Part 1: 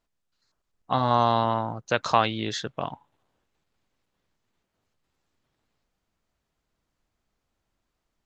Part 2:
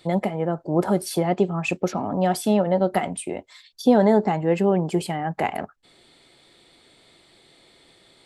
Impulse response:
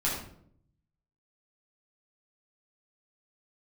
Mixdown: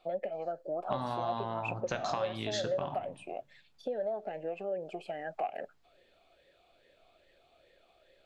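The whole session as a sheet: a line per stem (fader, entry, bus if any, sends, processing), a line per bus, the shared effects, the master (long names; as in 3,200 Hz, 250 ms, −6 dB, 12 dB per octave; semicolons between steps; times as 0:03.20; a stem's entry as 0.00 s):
−2.0 dB, 0.00 s, send −14.5 dB, downward compressor 6 to 1, threshold −27 dBFS, peak gain reduction 12.5 dB
+2.5 dB, 0.00 s, no send, downward compressor, threshold −21 dBFS, peak gain reduction 10 dB; formant filter swept between two vowels a-e 2.4 Hz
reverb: on, RT60 0.65 s, pre-delay 7 ms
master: downward compressor 2 to 1, threshold −33 dBFS, peak gain reduction 6.5 dB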